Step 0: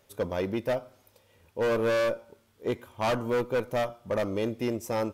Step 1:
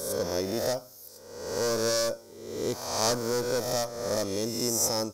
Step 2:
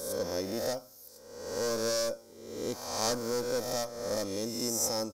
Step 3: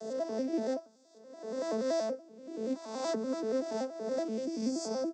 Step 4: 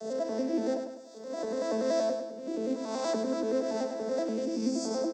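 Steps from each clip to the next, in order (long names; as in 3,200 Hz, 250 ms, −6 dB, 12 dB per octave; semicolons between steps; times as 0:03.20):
peak hold with a rise ahead of every peak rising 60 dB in 1.03 s; high shelf with overshoot 3,900 Hz +12.5 dB, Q 3; level −3 dB
comb filter 3.8 ms, depth 30%; level −4.5 dB
vocoder with an arpeggio as carrier minor triad, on A3, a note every 95 ms
camcorder AGC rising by 20 dB per second; repeating echo 102 ms, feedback 46%, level −7 dB; level +2 dB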